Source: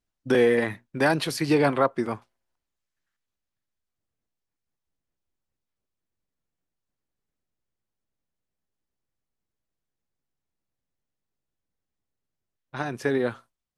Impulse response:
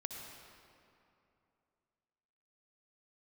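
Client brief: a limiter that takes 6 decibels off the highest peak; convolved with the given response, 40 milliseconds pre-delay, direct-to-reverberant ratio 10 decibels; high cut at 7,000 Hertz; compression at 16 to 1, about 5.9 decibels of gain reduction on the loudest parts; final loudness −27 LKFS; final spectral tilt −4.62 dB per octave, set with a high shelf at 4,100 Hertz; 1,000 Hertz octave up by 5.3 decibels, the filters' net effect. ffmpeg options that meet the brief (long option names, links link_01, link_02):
-filter_complex "[0:a]lowpass=7000,equalizer=frequency=1000:width_type=o:gain=7.5,highshelf=frequency=4100:gain=-4.5,acompressor=threshold=-19dB:ratio=16,alimiter=limit=-15.5dB:level=0:latency=1,asplit=2[link_01][link_02];[1:a]atrim=start_sample=2205,adelay=40[link_03];[link_02][link_03]afir=irnorm=-1:irlink=0,volume=-9dB[link_04];[link_01][link_04]amix=inputs=2:normalize=0,volume=0.5dB"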